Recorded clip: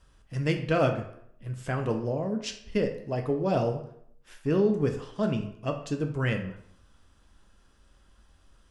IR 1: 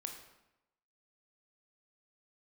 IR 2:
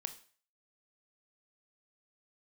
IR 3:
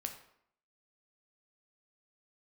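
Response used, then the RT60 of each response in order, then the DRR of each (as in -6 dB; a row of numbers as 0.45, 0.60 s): 3; 0.90, 0.45, 0.70 s; 3.5, 8.0, 4.0 dB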